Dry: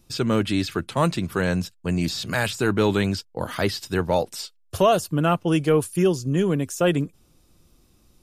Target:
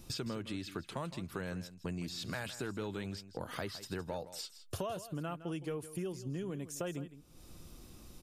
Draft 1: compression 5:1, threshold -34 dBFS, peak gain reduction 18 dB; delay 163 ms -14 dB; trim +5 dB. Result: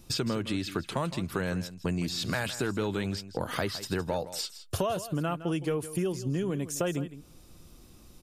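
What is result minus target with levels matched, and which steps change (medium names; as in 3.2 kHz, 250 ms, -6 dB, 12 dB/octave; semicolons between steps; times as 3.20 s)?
compression: peak gain reduction -9 dB
change: compression 5:1, threshold -45.5 dBFS, peak gain reduction 27.5 dB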